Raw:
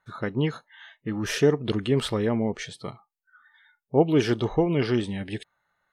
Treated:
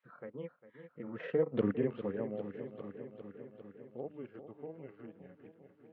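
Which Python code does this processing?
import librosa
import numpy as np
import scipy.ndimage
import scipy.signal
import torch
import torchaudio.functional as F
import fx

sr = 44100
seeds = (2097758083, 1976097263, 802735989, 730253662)

p1 = fx.doppler_pass(x, sr, speed_mps=21, closest_m=1.9, pass_at_s=1.64)
p2 = fx.low_shelf(p1, sr, hz=270.0, db=8.5)
p3 = fx.transient(p2, sr, attack_db=-2, sustain_db=-8)
p4 = fx.granulator(p3, sr, seeds[0], grain_ms=100.0, per_s=20.0, spray_ms=25.0, spread_st=0)
p5 = fx.dmg_noise_colour(p4, sr, seeds[1], colour='violet', level_db=-73.0)
p6 = fx.cabinet(p5, sr, low_hz=210.0, low_slope=12, high_hz=2400.0, hz=(340.0, 520.0, 1200.0), db=(-4, 10, 3))
p7 = p6 + fx.echo_feedback(p6, sr, ms=401, feedback_pct=58, wet_db=-14.0, dry=0)
p8 = fx.band_squash(p7, sr, depth_pct=40)
y = F.gain(torch.from_numpy(p8), 1.0).numpy()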